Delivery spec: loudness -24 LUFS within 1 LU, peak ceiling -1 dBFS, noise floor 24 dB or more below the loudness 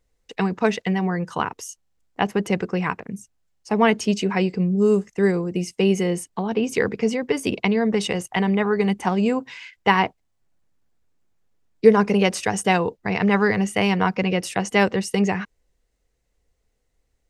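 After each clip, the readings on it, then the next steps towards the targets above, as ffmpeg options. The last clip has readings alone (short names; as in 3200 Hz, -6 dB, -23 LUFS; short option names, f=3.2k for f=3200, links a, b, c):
loudness -21.5 LUFS; peak -1.5 dBFS; loudness target -24.0 LUFS
-> -af "volume=-2.5dB"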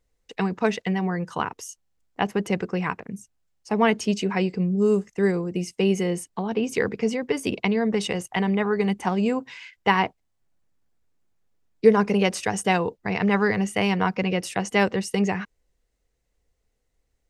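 loudness -24.0 LUFS; peak -4.0 dBFS; noise floor -74 dBFS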